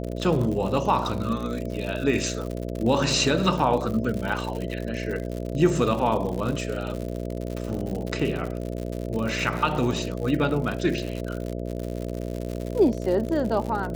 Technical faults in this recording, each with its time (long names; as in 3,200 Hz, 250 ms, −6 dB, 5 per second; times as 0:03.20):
mains buzz 60 Hz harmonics 11 −31 dBFS
surface crackle 99 per second −29 dBFS